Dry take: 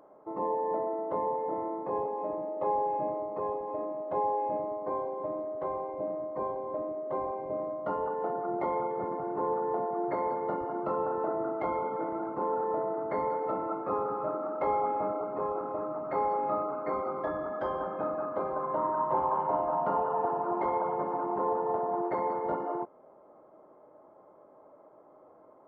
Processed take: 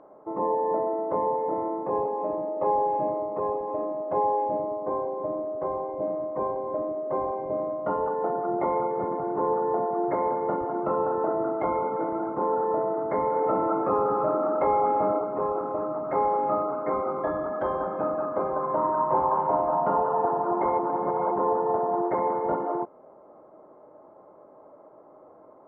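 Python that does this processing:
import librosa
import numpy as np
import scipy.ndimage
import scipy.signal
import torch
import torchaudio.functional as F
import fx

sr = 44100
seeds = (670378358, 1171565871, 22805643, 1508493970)

y = fx.high_shelf(x, sr, hz=2100.0, db=-8.0, at=(4.44, 6.02))
y = fx.env_flatten(y, sr, amount_pct=50, at=(13.36, 15.19))
y = fx.edit(y, sr, fx.reverse_span(start_s=20.79, length_s=0.52), tone=tone)
y = scipy.signal.sosfilt(scipy.signal.bessel(2, 1800.0, 'lowpass', norm='mag', fs=sr, output='sos'), y)
y = y * librosa.db_to_amplitude(5.5)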